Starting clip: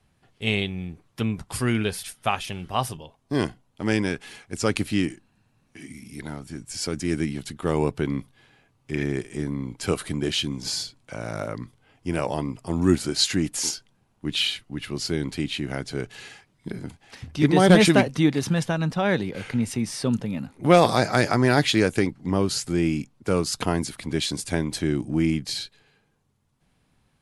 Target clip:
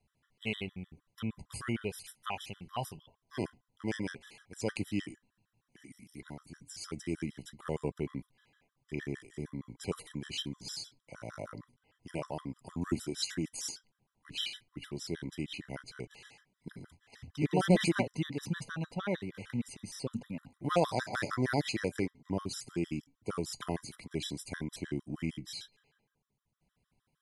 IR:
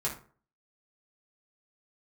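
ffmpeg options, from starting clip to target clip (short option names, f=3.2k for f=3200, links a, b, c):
-af "flanger=delay=4.5:depth=2:regen=-85:speed=0.12:shape=triangular,afftfilt=real='re*gt(sin(2*PI*6.5*pts/sr)*(1-2*mod(floor(b*sr/1024/1000),2)),0)':imag='im*gt(sin(2*PI*6.5*pts/sr)*(1-2*mod(floor(b*sr/1024/1000),2)),0)':win_size=1024:overlap=0.75,volume=-5dB"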